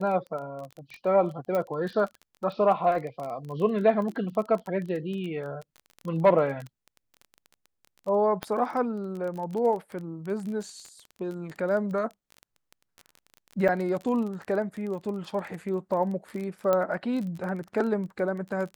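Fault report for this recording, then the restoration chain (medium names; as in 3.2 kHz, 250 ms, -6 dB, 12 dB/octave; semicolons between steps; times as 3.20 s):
crackle 21 per s -33 dBFS
1.55 s: pop -17 dBFS
8.43 s: pop -16 dBFS
13.68–13.69 s: dropout 6.6 ms
16.73 s: pop -13 dBFS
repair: de-click; interpolate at 13.68 s, 6.6 ms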